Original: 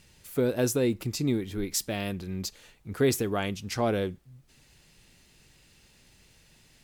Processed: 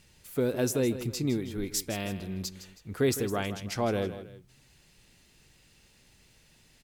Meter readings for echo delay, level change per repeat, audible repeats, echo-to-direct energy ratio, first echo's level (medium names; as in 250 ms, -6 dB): 160 ms, -7.5 dB, 2, -12.0 dB, -12.5 dB